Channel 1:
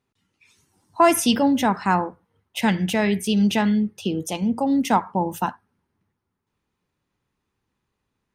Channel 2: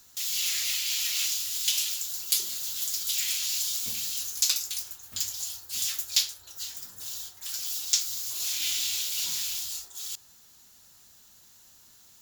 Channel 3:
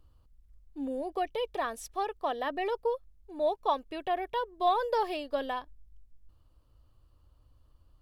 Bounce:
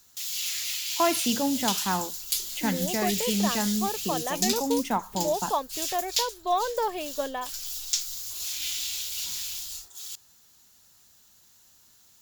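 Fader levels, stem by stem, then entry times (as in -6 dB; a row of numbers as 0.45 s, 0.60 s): -8.0 dB, -2.5 dB, +1.0 dB; 0.00 s, 0.00 s, 1.85 s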